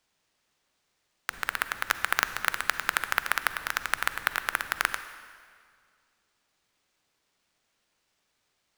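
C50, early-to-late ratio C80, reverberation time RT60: 11.5 dB, 12.5 dB, 2.0 s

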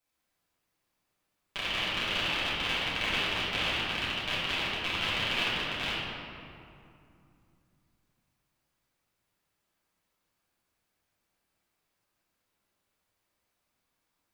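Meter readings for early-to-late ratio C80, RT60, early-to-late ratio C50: -0.5 dB, 2.6 s, -2.5 dB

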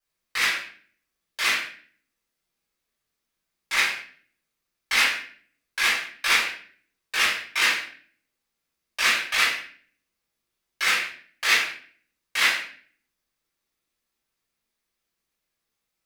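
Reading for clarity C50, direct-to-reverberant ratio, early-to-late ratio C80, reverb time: 4.0 dB, -11.0 dB, 8.5 dB, 0.45 s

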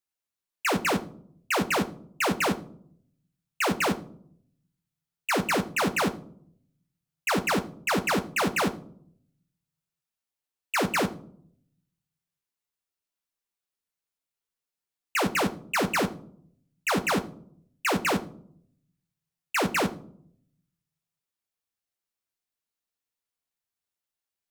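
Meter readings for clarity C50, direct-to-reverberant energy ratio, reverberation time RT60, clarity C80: 17.0 dB, 7.0 dB, 0.60 s, 20.0 dB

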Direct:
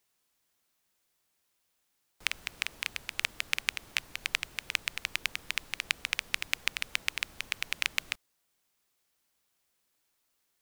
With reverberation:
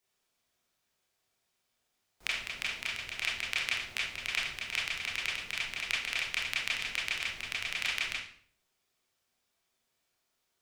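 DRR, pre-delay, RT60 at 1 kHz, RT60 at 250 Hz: -6.5 dB, 24 ms, 0.50 s, 0.70 s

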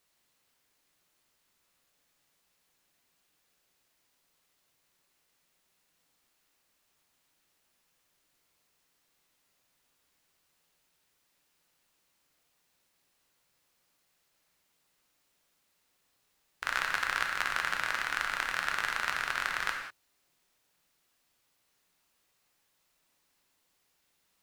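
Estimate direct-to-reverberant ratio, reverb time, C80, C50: 2.0 dB, no single decay rate, 6.5 dB, 4.5 dB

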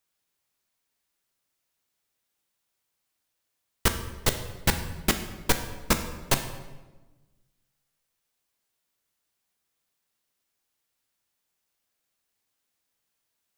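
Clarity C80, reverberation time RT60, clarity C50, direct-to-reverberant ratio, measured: 11.0 dB, 1.2 s, 9.0 dB, 6.5 dB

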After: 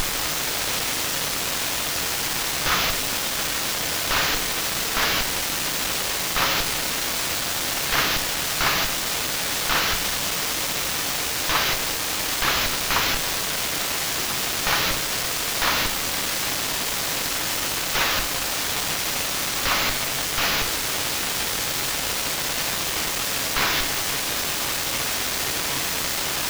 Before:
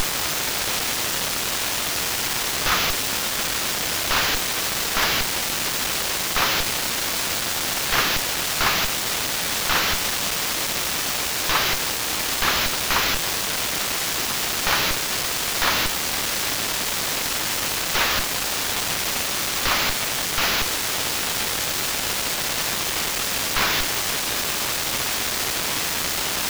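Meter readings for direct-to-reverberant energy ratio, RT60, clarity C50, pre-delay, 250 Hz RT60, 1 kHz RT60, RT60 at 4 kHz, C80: 7.5 dB, 0.75 s, 12.0 dB, 3 ms, 0.95 s, 0.70 s, 0.55 s, 15.0 dB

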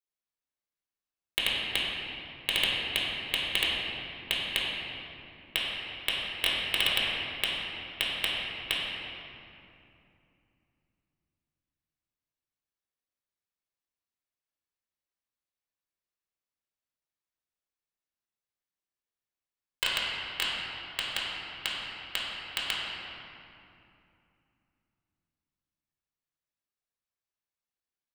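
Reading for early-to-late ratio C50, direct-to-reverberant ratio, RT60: -2.0 dB, -6.0 dB, 2.7 s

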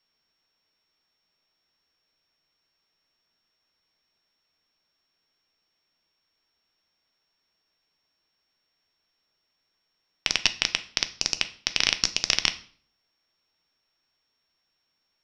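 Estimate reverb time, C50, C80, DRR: 0.50 s, 16.0 dB, 20.5 dB, 9.5 dB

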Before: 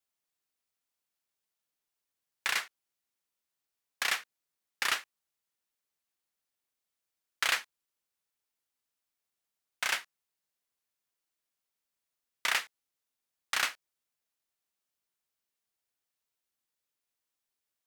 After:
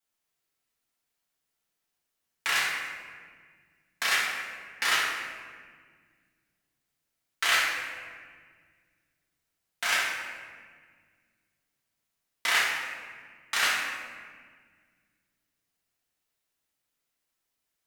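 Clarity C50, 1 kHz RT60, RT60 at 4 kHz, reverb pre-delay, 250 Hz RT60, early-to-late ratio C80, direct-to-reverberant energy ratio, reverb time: -0.5 dB, 1.6 s, 1.1 s, 4 ms, 2.7 s, 2.0 dB, -7.0 dB, 1.7 s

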